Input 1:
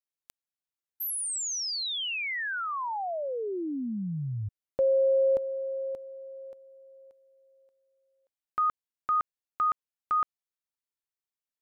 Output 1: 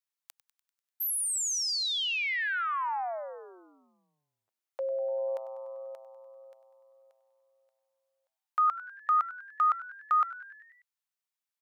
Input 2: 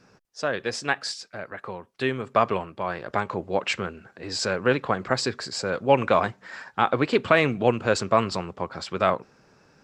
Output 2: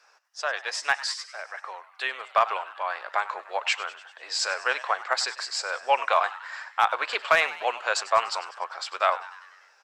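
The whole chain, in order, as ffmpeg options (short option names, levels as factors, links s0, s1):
-filter_complex "[0:a]highpass=f=710:w=0.5412,highpass=f=710:w=1.3066,asoftclip=type=hard:threshold=0.282,asplit=2[s0][s1];[s1]asplit=6[s2][s3][s4][s5][s6][s7];[s2]adelay=98,afreqshift=120,volume=0.15[s8];[s3]adelay=196,afreqshift=240,volume=0.0881[s9];[s4]adelay=294,afreqshift=360,volume=0.0519[s10];[s5]adelay=392,afreqshift=480,volume=0.0309[s11];[s6]adelay=490,afreqshift=600,volume=0.0182[s12];[s7]adelay=588,afreqshift=720,volume=0.0107[s13];[s8][s9][s10][s11][s12][s13]amix=inputs=6:normalize=0[s14];[s0][s14]amix=inputs=2:normalize=0,volume=1.19"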